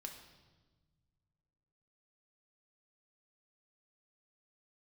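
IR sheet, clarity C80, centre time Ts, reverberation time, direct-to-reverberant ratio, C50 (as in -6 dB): 9.0 dB, 27 ms, 1.3 s, 2.5 dB, 7.0 dB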